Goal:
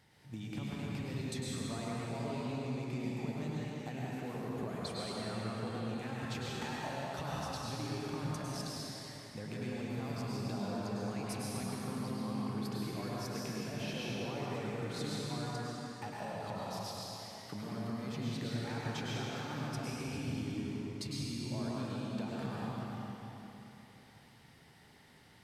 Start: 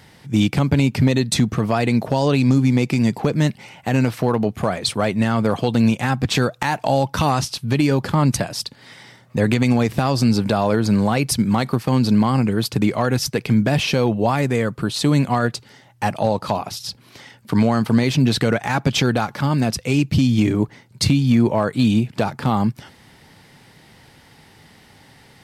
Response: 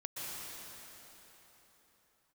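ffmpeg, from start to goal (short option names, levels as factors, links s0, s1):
-filter_complex "[0:a]flanger=delay=8.8:depth=6.8:regen=85:speed=0.11:shape=sinusoidal,acompressor=threshold=0.0447:ratio=6[s0];[1:a]atrim=start_sample=2205,asetrate=52920,aresample=44100[s1];[s0][s1]afir=irnorm=-1:irlink=0,volume=0.422"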